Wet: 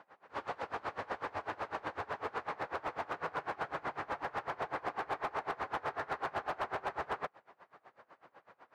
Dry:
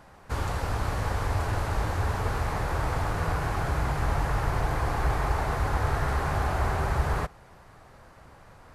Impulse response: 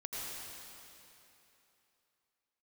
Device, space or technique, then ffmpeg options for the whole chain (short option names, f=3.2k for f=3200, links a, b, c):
helicopter radio: -af "highpass=370,lowpass=2.8k,aeval=exprs='val(0)*pow(10,-25*(0.5-0.5*cos(2*PI*8*n/s))/20)':c=same,asoftclip=type=hard:threshold=-29dB"